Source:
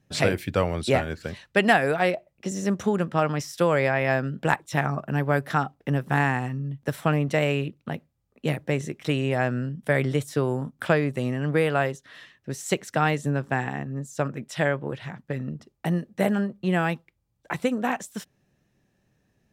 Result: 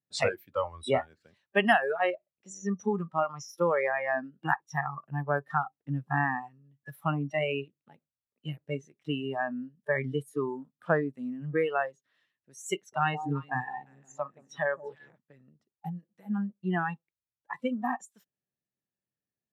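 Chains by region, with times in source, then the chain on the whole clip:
12.75–15.16 s: peaking EQ 3.7 kHz +3 dB 0.4 oct + echo whose repeats swap between lows and highs 174 ms, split 920 Hz, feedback 56%, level -5.5 dB
15.89–16.30 s: comb 6 ms, depth 62% + compression, threshold -26 dBFS
whole clip: high-pass 150 Hz 6 dB/octave; spectral noise reduction 23 dB; treble shelf 8.2 kHz -4.5 dB; trim -3 dB

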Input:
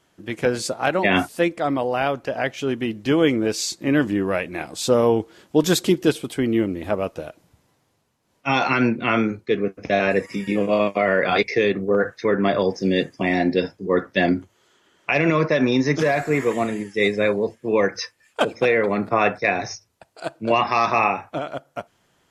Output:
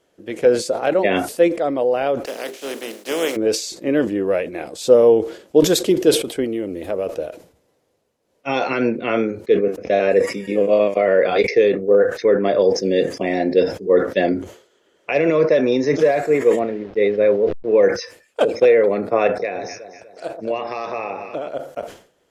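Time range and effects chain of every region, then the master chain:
2.25–3.35 s: spectral contrast reduction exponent 0.38 + ladder high-pass 180 Hz, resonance 25% + hum notches 50/100/150/200/250/300/350/400 Hz
6.44–7.07 s: treble shelf 5.2 kHz +10.5 dB + compression 4:1, threshold -21 dBFS + decimation joined by straight lines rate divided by 2×
16.59–17.83 s: send-on-delta sampling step -36.5 dBFS + distance through air 250 m
19.27–21.49 s: echo whose repeats swap between lows and highs 123 ms, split 1.1 kHz, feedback 64%, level -11 dB + compression 2.5:1, threshold -24 dBFS
whole clip: graphic EQ 125/500/1000 Hz -5/+12/-4 dB; decay stretcher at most 120 dB/s; trim -3.5 dB

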